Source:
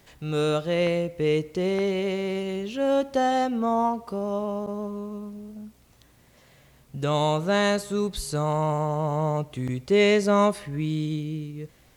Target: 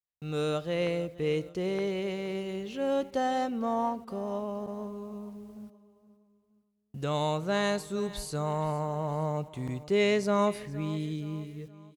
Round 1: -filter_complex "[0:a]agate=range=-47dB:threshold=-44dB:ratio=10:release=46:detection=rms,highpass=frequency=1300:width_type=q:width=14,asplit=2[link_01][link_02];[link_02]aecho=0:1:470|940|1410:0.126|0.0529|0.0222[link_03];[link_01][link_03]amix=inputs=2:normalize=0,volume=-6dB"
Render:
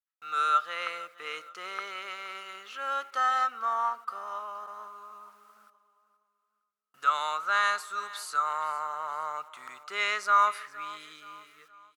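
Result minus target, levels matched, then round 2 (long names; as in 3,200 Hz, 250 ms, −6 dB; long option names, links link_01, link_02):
1,000 Hz band +5.5 dB
-filter_complex "[0:a]agate=range=-47dB:threshold=-44dB:ratio=10:release=46:detection=rms,asplit=2[link_01][link_02];[link_02]aecho=0:1:470|940|1410:0.126|0.0529|0.0222[link_03];[link_01][link_03]amix=inputs=2:normalize=0,volume=-6dB"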